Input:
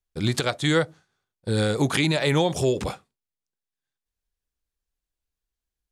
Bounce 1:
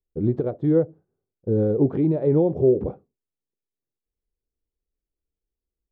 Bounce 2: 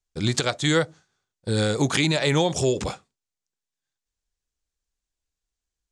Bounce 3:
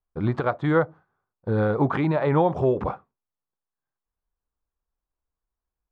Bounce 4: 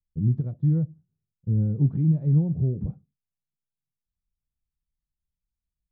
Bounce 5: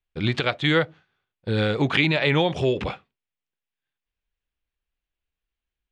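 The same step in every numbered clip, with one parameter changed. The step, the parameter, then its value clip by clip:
synth low-pass, frequency: 420, 7200, 1100, 160, 2800 Hz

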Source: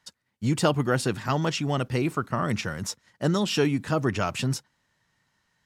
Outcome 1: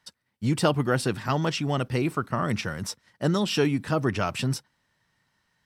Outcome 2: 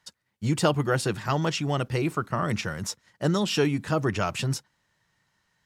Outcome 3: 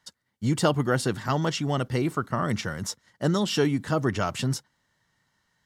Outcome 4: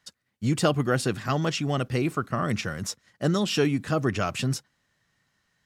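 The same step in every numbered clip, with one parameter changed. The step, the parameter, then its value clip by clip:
notch, frequency: 6800, 250, 2500, 920 Hz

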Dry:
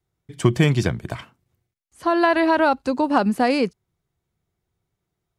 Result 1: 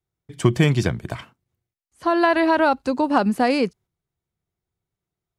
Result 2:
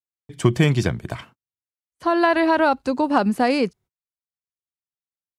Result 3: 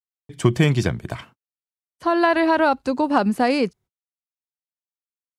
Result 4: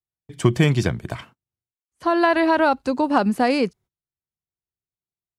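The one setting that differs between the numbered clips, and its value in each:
gate, range: -7, -37, -55, -23 dB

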